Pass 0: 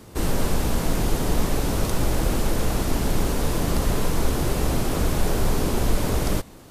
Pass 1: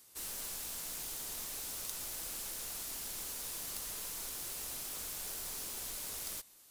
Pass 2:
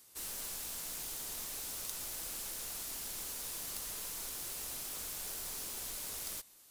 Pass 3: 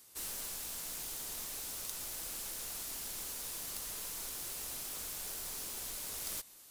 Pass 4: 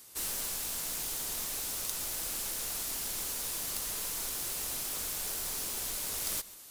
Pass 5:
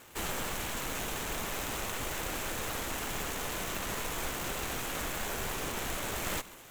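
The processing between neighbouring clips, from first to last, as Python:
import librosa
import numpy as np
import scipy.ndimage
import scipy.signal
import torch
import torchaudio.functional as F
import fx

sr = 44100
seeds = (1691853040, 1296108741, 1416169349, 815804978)

y1 = fx.self_delay(x, sr, depth_ms=0.086)
y1 = scipy.signal.lfilter([1.0, -0.97], [1.0], y1)
y1 = F.gain(torch.from_numpy(y1), -5.5).numpy()
y2 = y1
y3 = fx.rider(y2, sr, range_db=10, speed_s=0.5)
y4 = y3 + 10.0 ** (-21.0 / 20.0) * np.pad(y3, (int(139 * sr / 1000.0), 0))[:len(y3)]
y4 = F.gain(torch.from_numpy(y4), 6.0).numpy()
y5 = scipy.ndimage.median_filter(y4, 9, mode='constant')
y5 = F.gain(torch.from_numpy(y5), 8.5).numpy()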